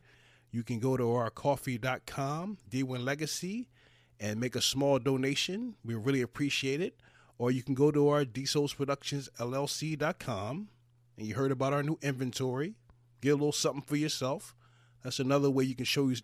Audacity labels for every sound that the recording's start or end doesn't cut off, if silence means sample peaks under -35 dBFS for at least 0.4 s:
0.540000	3.620000	sound
4.220000	6.890000	sound
7.400000	10.610000	sound
11.210000	12.690000	sound
13.230000	14.370000	sound